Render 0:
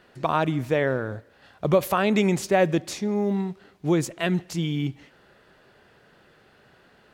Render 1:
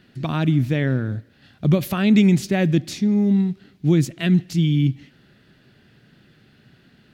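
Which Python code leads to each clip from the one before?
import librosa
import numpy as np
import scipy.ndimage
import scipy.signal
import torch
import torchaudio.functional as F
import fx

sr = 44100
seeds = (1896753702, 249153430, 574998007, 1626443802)

y = fx.graphic_eq(x, sr, hz=(125, 250, 500, 1000, 4000, 8000), db=(8, 7, -8, -10, 3, -4))
y = y * 10.0 ** (2.0 / 20.0)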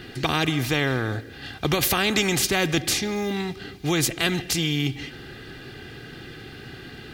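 y = x + 0.6 * np.pad(x, (int(2.5 * sr / 1000.0), 0))[:len(x)]
y = fx.spectral_comp(y, sr, ratio=2.0)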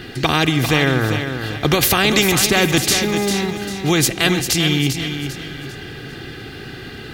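y = fx.echo_feedback(x, sr, ms=397, feedback_pct=36, wet_db=-8.0)
y = y * 10.0 ** (6.5 / 20.0)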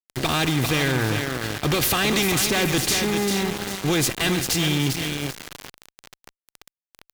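y = np.where(np.abs(x) >= 10.0 ** (-23.0 / 20.0), x, 0.0)
y = fx.tube_stage(y, sr, drive_db=17.0, bias=0.4)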